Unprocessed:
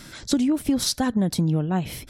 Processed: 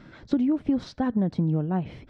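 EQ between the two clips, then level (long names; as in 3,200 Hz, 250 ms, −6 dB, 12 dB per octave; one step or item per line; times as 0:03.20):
head-to-tape spacing loss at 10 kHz 43 dB
low-shelf EQ 90 Hz −7.5 dB
0.0 dB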